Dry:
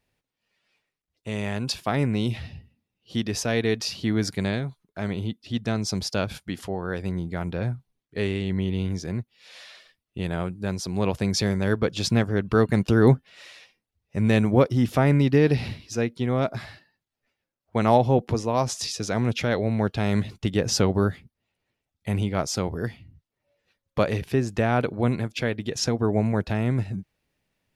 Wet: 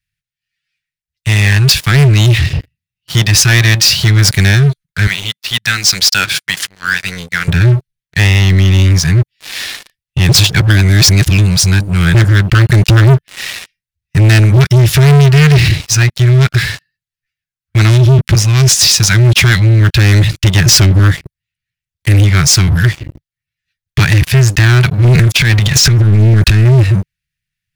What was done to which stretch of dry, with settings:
0:05.07–0:07.48: meter weighting curve A
0:10.29–0:12.14: reverse
0:25.04–0:26.65: transient designer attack −11 dB, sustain +9 dB
whole clip: elliptic band-stop filter 150–1,600 Hz, stop band 40 dB; leveller curve on the samples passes 5; level +8.5 dB

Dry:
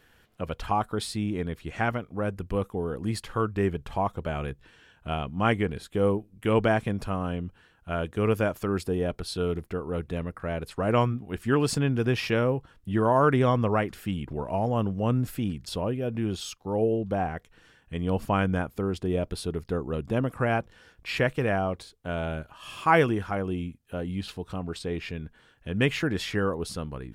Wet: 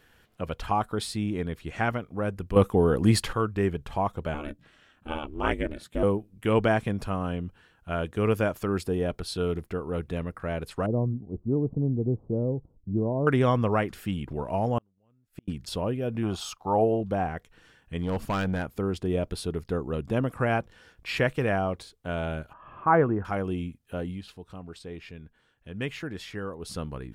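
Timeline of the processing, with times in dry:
0:02.56–0:03.33: clip gain +9 dB
0:04.34–0:06.03: ring modulation 150 Hz
0:10.86–0:13.27: Gaussian smoothing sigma 15 samples
0:14.78–0:15.48: gate with flip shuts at −24 dBFS, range −42 dB
0:16.23–0:17.01: flat-topped bell 910 Hz +11 dB 1.3 octaves
0:17.98–0:18.75: hard clipping −23 dBFS
0:22.53–0:23.25: low-pass filter 1,500 Hz 24 dB per octave
0:24.05–0:26.76: duck −8.5 dB, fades 0.16 s

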